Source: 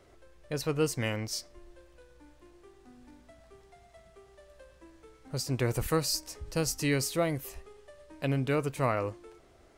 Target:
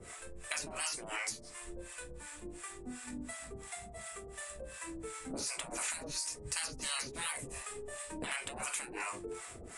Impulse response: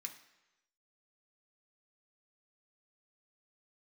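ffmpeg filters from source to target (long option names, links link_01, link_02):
-filter_complex "[0:a]aexciter=amount=3.8:drive=6.7:freq=7800[link_01];[1:a]atrim=start_sample=2205,atrim=end_sample=4410[link_02];[link_01][link_02]afir=irnorm=-1:irlink=0,acontrast=61,afftfilt=real='re*lt(hypot(re,im),0.0398)':imag='im*lt(hypot(re,im),0.0398)':win_size=1024:overlap=0.75,adynamicequalizer=threshold=0.00398:dfrequency=610:dqfactor=4.1:tfrequency=610:tqfactor=4.1:attack=5:release=100:ratio=0.375:range=2.5:mode=cutabove:tftype=bell,acrossover=split=660[link_03][link_04];[link_03]aeval=exprs='val(0)*(1-1/2+1/2*cos(2*PI*2.8*n/s))':channel_layout=same[link_05];[link_04]aeval=exprs='val(0)*(1-1/2-1/2*cos(2*PI*2.8*n/s))':channel_layout=same[link_06];[link_05][link_06]amix=inputs=2:normalize=0,acompressor=threshold=-54dB:ratio=2.5,aresample=22050,aresample=44100,volume=15.5dB"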